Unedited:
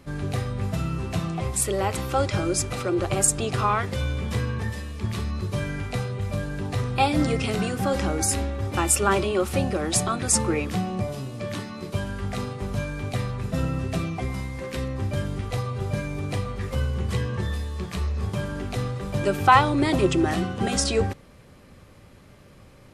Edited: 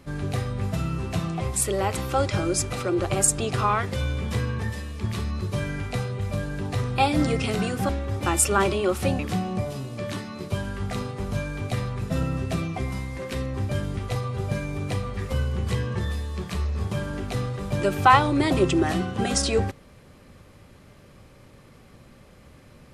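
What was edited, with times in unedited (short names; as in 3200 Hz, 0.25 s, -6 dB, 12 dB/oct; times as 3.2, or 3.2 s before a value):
7.89–8.4 cut
9.7–10.61 cut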